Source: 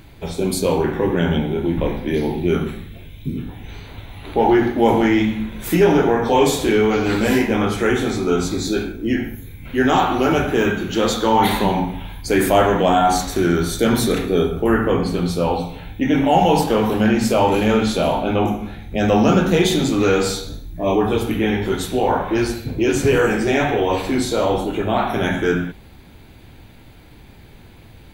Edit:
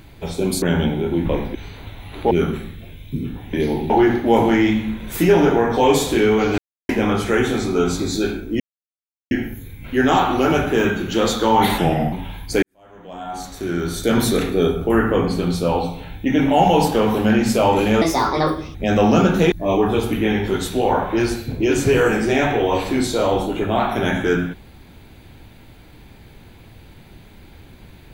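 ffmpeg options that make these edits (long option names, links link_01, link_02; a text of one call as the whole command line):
ffmpeg -i in.wav -filter_complex "[0:a]asplit=15[link_01][link_02][link_03][link_04][link_05][link_06][link_07][link_08][link_09][link_10][link_11][link_12][link_13][link_14][link_15];[link_01]atrim=end=0.622[link_16];[link_02]atrim=start=1.138:end=2.072[link_17];[link_03]atrim=start=3.658:end=4.422[link_18];[link_04]atrim=start=2.438:end=3.662[link_19];[link_05]atrim=start=2.068:end=2.442[link_20];[link_06]atrim=start=4.418:end=7.1,asetpts=PTS-STARTPTS,afade=type=out:start_time=2.678:duration=0.004:curve=hsin[link_21];[link_07]atrim=start=7.1:end=7.41,asetpts=PTS-STARTPTS,volume=0[link_22];[link_08]atrim=start=7.41:end=9.12,asetpts=PTS-STARTPTS,afade=type=in:duration=0.004:curve=hsin,afade=type=out:start_time=1.706:duration=0.004:curve=hsin,apad=pad_dur=0.71[link_23];[link_09]atrim=start=9.12:end=11.594,asetpts=PTS-STARTPTS,afade=type=in:duration=0.004:curve=hsin[link_24];[link_10]atrim=start=11.59:end=11.88,asetpts=PTS-STARTPTS,asetrate=37044,aresample=44100[link_25];[link_11]atrim=start=11.876:end=12.38,asetpts=PTS-STARTPTS,afade=type=out:start_time=0.5:duration=0.004:curve=hsin[link_26];[link_12]atrim=start=12.38:end=17.774,asetpts=PTS-STARTPTS,afade=type=in:duration=1.57:curve=qua[link_27];[link_13]atrim=start=17.77:end=18.87,asetpts=PTS-STARTPTS,asetrate=66150,aresample=44100[link_28];[link_14]atrim=start=18.866:end=19.642[link_29];[link_15]atrim=start=20.698[link_30];[link_16][link_17]acrossfade=duration=0.004:curve1=hsin:curve2=hsin[link_31];[link_31][link_18]acrossfade=duration=0.004:curve1=hsin:curve2=hsin[link_32];[link_32][link_19]acrossfade=duration=0.004:curve1=hsin:curve2=hsin[link_33];[link_33][link_20]acrossfade=duration=0.004:curve1=hsin:curve2=hsin[link_34];[link_21][link_22][link_23][link_24]concat=n=4:v=0:a=1[link_35];[link_34][link_35]acrossfade=duration=0.004:curve1=hsin:curve2=hsin[link_36];[link_36][link_25]acrossfade=duration=0.004:curve1=hsin:curve2=hsin[link_37];[link_26][link_27]concat=n=2:v=0:a=1[link_38];[link_37][link_38]acrossfade=duration=0.004:curve1=hsin:curve2=hsin[link_39];[link_39][link_28]acrossfade=duration=0.004:curve1=hsin:curve2=hsin[link_40];[link_40][link_29]acrossfade=duration=0.004:curve1=hsin:curve2=hsin[link_41];[link_41][link_30]acrossfade=duration=0.004:curve1=hsin:curve2=hsin" out.wav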